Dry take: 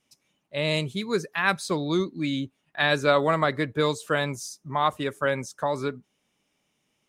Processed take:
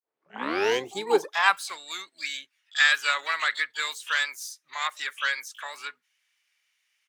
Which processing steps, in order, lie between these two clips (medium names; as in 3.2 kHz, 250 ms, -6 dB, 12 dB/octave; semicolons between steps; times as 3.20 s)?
tape start-up on the opening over 0.96 s; high-pass sweep 460 Hz -> 1.8 kHz, 1.16–1.77 s; harmony voices -5 st -18 dB, +12 st -9 dB; trim -1.5 dB